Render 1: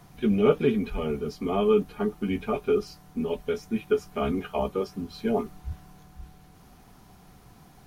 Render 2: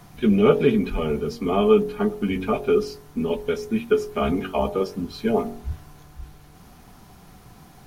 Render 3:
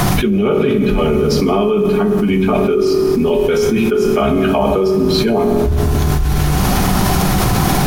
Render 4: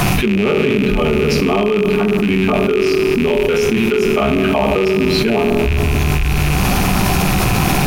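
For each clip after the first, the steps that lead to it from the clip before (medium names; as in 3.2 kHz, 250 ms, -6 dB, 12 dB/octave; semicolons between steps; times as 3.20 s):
de-hum 46.68 Hz, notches 21; trim +5.5 dB
reverberation RT60 1.3 s, pre-delay 3 ms, DRR 6.5 dB; level flattener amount 100%; trim -1 dB
rattle on loud lows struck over -25 dBFS, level -10 dBFS; trim -1 dB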